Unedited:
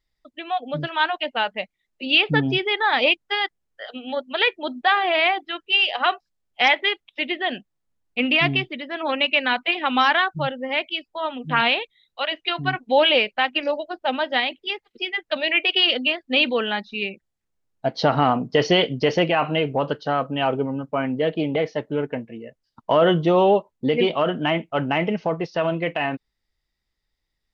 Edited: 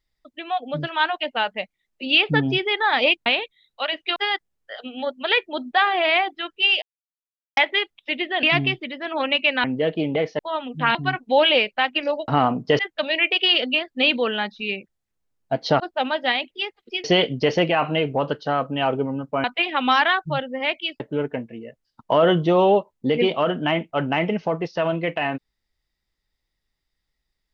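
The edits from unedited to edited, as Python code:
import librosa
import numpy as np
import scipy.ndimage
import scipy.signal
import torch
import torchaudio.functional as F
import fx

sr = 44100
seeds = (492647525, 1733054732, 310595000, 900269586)

y = fx.edit(x, sr, fx.silence(start_s=5.92, length_s=0.75),
    fx.cut(start_s=7.53, length_s=0.79),
    fx.swap(start_s=9.53, length_s=1.56, other_s=21.04, other_length_s=0.75),
    fx.move(start_s=11.65, length_s=0.9, to_s=3.26),
    fx.swap(start_s=13.88, length_s=1.24, other_s=18.13, other_length_s=0.51), tone=tone)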